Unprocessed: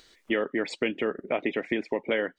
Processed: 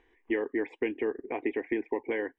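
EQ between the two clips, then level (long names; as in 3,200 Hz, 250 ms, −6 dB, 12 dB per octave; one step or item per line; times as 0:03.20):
low-pass filter 1,700 Hz 12 dB per octave
phaser with its sweep stopped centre 890 Hz, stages 8
0.0 dB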